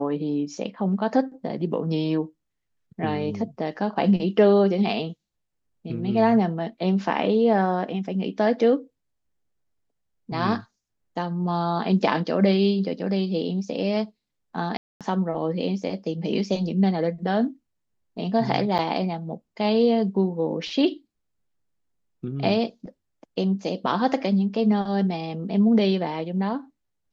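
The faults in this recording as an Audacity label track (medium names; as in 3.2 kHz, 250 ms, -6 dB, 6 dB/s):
14.770000	15.010000	dropout 237 ms
18.780000	18.790000	dropout 7.7 ms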